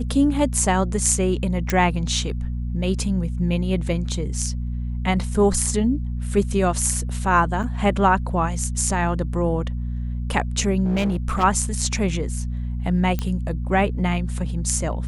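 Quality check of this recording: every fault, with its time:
hum 60 Hz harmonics 4 -26 dBFS
1.70 s: pop -6 dBFS
7.63–7.64 s: dropout 6 ms
10.84–11.44 s: clipped -17.5 dBFS
13.19 s: pop -11 dBFS

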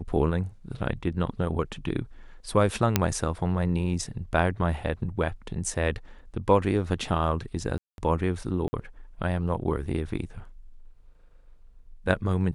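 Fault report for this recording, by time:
2.96 s: pop -4 dBFS
7.78–7.98 s: dropout 201 ms
8.68–8.73 s: dropout 50 ms

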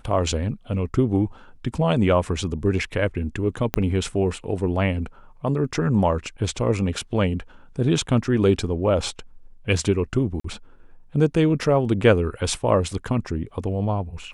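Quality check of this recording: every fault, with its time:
3.74 s: pop -6 dBFS
10.40–10.44 s: dropout 44 ms

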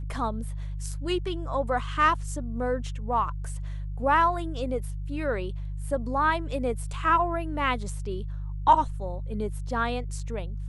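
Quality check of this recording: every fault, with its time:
hum 50 Hz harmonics 3 -33 dBFS

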